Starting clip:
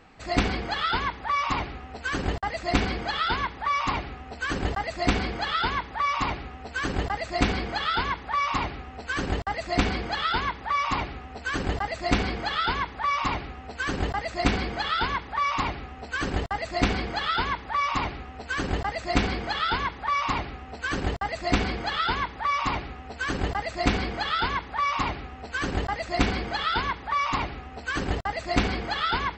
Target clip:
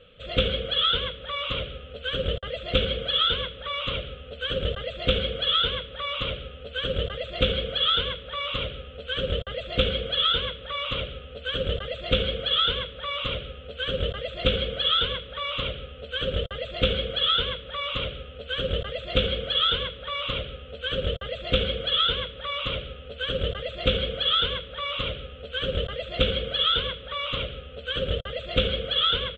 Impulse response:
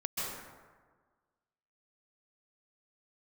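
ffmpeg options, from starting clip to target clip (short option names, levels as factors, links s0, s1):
-af "firequalizer=gain_entry='entry(140,0);entry(330,-13);entry(520,14);entry(820,-29);entry(1300,-1);entry(1900,-11);entry(3300,15);entry(4800,-25);entry(7800,-18)':delay=0.05:min_phase=1"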